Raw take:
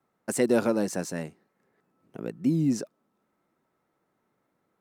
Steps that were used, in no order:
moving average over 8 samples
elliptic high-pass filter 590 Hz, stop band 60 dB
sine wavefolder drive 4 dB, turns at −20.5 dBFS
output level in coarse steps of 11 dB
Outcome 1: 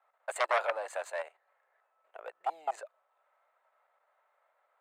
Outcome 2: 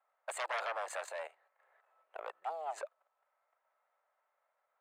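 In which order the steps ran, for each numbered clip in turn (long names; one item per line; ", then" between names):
moving average, then output level in coarse steps, then sine wavefolder, then elliptic high-pass filter
moving average, then sine wavefolder, then output level in coarse steps, then elliptic high-pass filter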